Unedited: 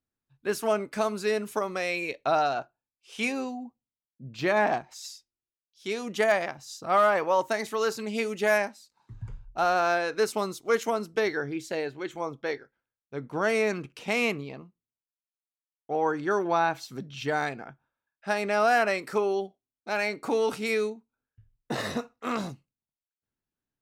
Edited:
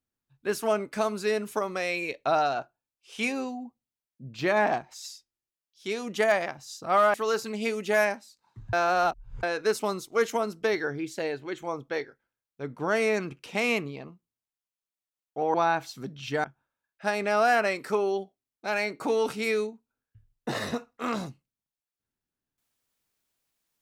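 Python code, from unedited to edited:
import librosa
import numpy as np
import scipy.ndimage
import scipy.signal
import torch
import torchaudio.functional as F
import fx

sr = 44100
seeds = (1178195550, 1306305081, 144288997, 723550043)

y = fx.edit(x, sr, fx.cut(start_s=7.14, length_s=0.53),
    fx.reverse_span(start_s=9.26, length_s=0.7),
    fx.cut(start_s=16.07, length_s=0.41),
    fx.cut(start_s=17.38, length_s=0.29), tone=tone)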